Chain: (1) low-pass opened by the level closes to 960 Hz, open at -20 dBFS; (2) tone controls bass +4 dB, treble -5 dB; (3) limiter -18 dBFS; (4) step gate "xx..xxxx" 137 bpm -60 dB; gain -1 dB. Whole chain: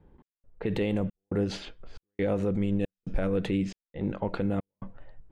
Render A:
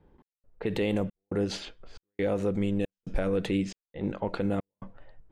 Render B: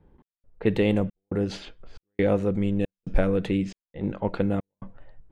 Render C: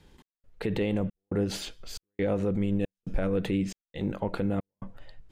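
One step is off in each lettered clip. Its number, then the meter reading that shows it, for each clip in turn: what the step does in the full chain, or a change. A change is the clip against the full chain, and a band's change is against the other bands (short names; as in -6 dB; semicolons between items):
2, 125 Hz band -3.0 dB; 3, mean gain reduction 2.0 dB; 1, 4 kHz band +2.5 dB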